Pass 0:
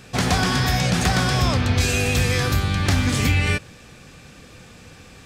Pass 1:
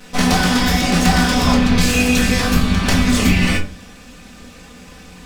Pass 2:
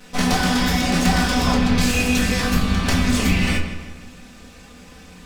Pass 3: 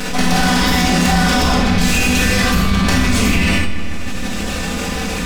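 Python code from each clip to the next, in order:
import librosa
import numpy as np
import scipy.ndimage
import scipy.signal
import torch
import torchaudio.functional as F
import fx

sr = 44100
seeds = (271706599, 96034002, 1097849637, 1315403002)

y1 = fx.lower_of_two(x, sr, delay_ms=4.0)
y1 = fx.room_shoebox(y1, sr, seeds[0], volume_m3=200.0, walls='furnished', distance_m=1.2)
y1 = F.gain(torch.from_numpy(y1), 3.5).numpy()
y2 = fx.echo_filtered(y1, sr, ms=157, feedback_pct=49, hz=4000.0, wet_db=-10)
y2 = F.gain(torch.from_numpy(y2), -4.0).numpy()
y3 = fx.rev_schroeder(y2, sr, rt60_s=0.43, comb_ms=31, drr_db=1.5)
y3 = fx.env_flatten(y3, sr, amount_pct=70)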